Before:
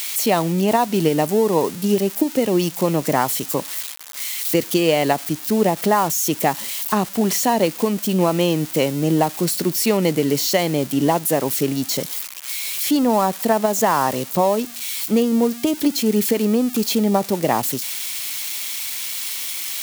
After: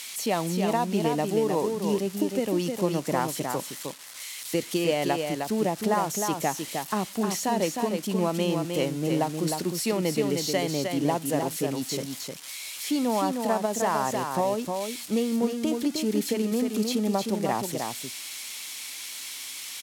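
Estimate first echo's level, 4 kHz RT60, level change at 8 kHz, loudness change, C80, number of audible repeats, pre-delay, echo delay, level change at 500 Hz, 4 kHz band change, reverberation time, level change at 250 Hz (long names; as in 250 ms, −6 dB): −5.0 dB, no reverb audible, −8.5 dB, −8.0 dB, no reverb audible, 1, no reverb audible, 309 ms, −7.5 dB, −7.5 dB, no reverb audible, −7.5 dB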